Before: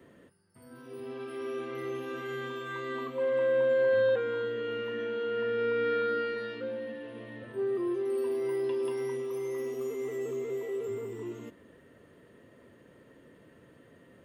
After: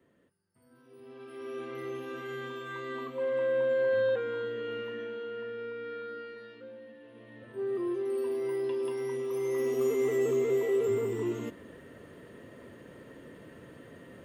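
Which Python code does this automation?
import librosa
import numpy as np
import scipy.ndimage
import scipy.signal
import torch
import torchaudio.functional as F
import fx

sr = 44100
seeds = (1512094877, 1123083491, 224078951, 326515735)

y = fx.gain(x, sr, db=fx.line((0.94, -11.0), (1.63, -2.0), (4.78, -2.0), (5.79, -11.0), (6.96, -11.0), (7.77, -1.0), (9.02, -1.0), (9.86, 7.0)))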